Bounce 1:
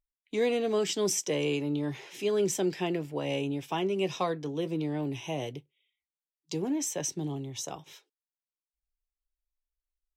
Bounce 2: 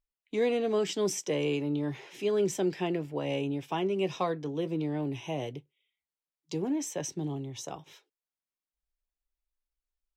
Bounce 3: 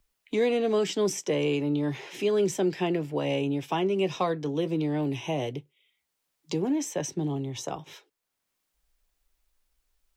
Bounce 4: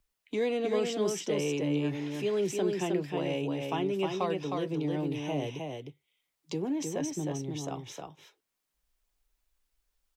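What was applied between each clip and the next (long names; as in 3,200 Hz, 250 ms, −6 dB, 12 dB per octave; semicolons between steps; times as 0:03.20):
high-shelf EQ 3,900 Hz −7 dB
multiband upward and downward compressor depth 40%; level +3.5 dB
single-tap delay 311 ms −4 dB; level −5 dB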